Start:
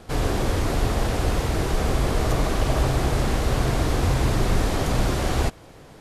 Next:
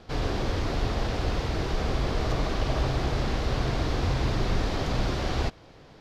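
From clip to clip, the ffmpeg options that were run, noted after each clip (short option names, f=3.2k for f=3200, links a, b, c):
-af "highshelf=f=6.8k:t=q:w=1.5:g=-12,volume=-5dB"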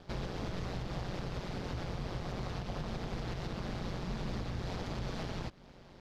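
-af "alimiter=limit=-24dB:level=0:latency=1:release=200,aeval=exprs='val(0)+0.00178*(sin(2*PI*50*n/s)+sin(2*PI*2*50*n/s)/2+sin(2*PI*3*50*n/s)/3+sin(2*PI*4*50*n/s)/4+sin(2*PI*5*50*n/s)/5)':c=same,aeval=exprs='val(0)*sin(2*PI*91*n/s)':c=same,volume=-2.5dB"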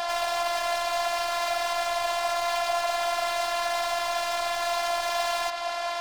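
-filter_complex "[0:a]asplit=2[a][b];[b]highpass=f=720:p=1,volume=39dB,asoftclip=type=tanh:threshold=-26dB[c];[a][c]amix=inputs=2:normalize=0,lowpass=f=7.6k:p=1,volume=-6dB,afftfilt=real='hypot(re,im)*cos(PI*b)':imag='0':win_size=512:overlap=0.75,lowshelf=f=500:t=q:w=3:g=-12.5,volume=6.5dB"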